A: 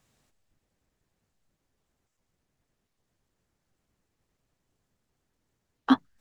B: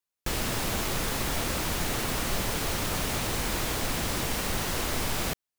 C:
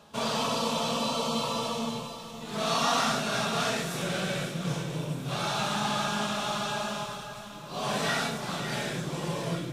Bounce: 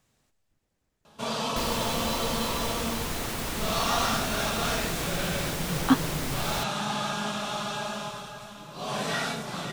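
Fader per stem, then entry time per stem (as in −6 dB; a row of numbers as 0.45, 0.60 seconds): 0.0, −3.0, −1.0 decibels; 0.00, 1.30, 1.05 seconds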